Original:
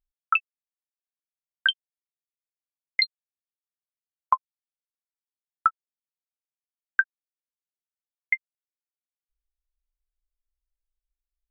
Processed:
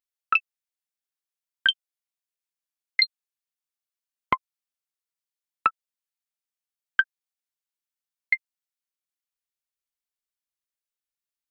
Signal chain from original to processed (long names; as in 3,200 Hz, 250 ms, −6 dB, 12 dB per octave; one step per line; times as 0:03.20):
high-pass filter 1,400 Hz 6 dB per octave
highs frequency-modulated by the lows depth 0.23 ms
level +3 dB